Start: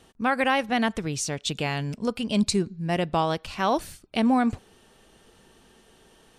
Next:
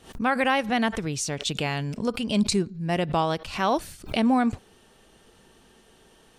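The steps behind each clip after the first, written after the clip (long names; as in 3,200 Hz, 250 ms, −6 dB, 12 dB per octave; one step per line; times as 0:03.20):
background raised ahead of every attack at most 140 dB per second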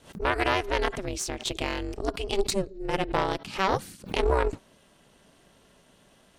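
ring modulation 190 Hz
harmonic generator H 2 −8 dB, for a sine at −12 dBFS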